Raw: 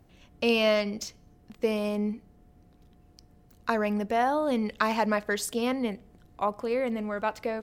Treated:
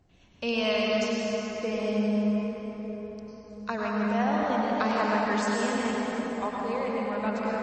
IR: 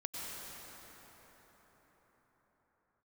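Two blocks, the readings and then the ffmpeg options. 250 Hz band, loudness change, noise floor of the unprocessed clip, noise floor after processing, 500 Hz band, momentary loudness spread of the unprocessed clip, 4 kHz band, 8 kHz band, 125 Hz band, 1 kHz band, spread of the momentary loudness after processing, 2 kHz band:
+2.5 dB, 0.0 dB, -59 dBFS, -57 dBFS, -0.5 dB, 9 LU, +0.5 dB, -1.5 dB, +3.5 dB, +1.0 dB, 11 LU, +0.5 dB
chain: -filter_complex "[0:a]equalizer=f=560:t=o:w=0.77:g=-2.5,bandreject=f=50:t=h:w=6,bandreject=f=100:t=h:w=6,bandreject=f=150:t=h:w=6,bandreject=f=200:t=h:w=6,bandreject=f=250:t=h:w=6,bandreject=f=300:t=h:w=6,bandreject=f=350:t=h:w=6[a];[1:a]atrim=start_sample=2205[b];[a][b]afir=irnorm=-1:irlink=0" -ar 24000 -c:a libmp3lame -b:a 32k

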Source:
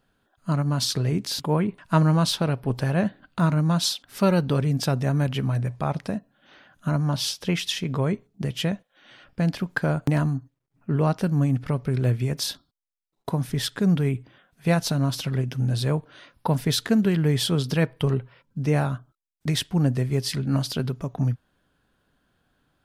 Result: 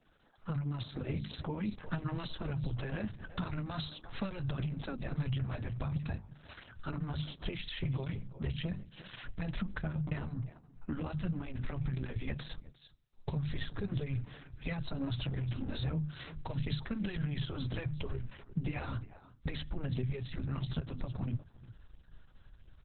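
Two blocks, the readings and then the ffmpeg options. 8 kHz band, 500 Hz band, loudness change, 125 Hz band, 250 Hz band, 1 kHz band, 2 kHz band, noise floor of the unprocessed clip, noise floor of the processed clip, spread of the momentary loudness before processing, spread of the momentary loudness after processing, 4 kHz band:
under -40 dB, -17.0 dB, -14.0 dB, -13.0 dB, -14.5 dB, -16.0 dB, -12.0 dB, -73 dBFS, -61 dBFS, 8 LU, 8 LU, -16.5 dB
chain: -filter_complex "[0:a]bandreject=f=50:t=h:w=6,bandreject=f=100:t=h:w=6,bandreject=f=150:t=h:w=6,bandreject=f=200:t=h:w=6,bandreject=f=250:t=h:w=6,asubboost=boost=11.5:cutoff=74,afftfilt=real='re*lt(hypot(re,im),0.891)':imag='im*lt(hypot(re,im),0.891)':win_size=1024:overlap=0.75,flanger=delay=0.3:depth=3.5:regen=5:speed=1.5:shape=sinusoidal,acompressor=threshold=-33dB:ratio=3,lowpass=10k,flanger=delay=3.8:depth=9.9:regen=-26:speed=0.41:shape=triangular,adynamicequalizer=threshold=0.002:dfrequency=120:dqfactor=2.2:tfrequency=120:tqfactor=2.2:attack=5:release=100:ratio=0.375:range=2:mode=boostabove:tftype=bell,asplit=2[a][b];[b]aecho=0:1:353:0.075[c];[a][c]amix=inputs=2:normalize=0,acrossover=split=250|1900[d][e][f];[d]acompressor=threshold=-40dB:ratio=4[g];[e]acompressor=threshold=-51dB:ratio=4[h];[f]acompressor=threshold=-53dB:ratio=4[i];[g][h][i]amix=inputs=3:normalize=0,volume=8dB" -ar 48000 -c:a libopus -b:a 6k

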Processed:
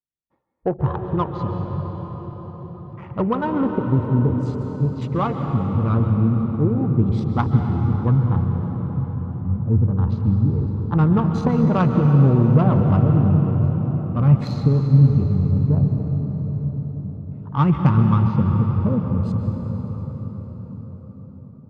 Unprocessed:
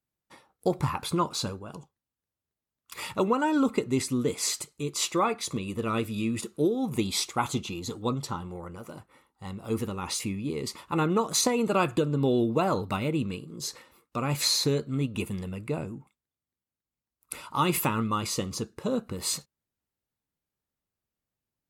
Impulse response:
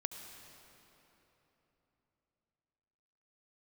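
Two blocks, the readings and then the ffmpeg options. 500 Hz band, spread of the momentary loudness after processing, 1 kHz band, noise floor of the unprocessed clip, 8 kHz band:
+3.0 dB, 15 LU, +3.5 dB, under -85 dBFS, under -25 dB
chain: -filter_complex "[0:a]afwtdn=0.0158,bandreject=f=50:t=h:w=6,bandreject=f=100:t=h:w=6,asubboost=boost=10.5:cutoff=110,adynamicsmooth=sensitivity=0.5:basefreq=900[a];[1:a]atrim=start_sample=2205,asetrate=23373,aresample=44100[b];[a][b]afir=irnorm=-1:irlink=0,volume=4dB"

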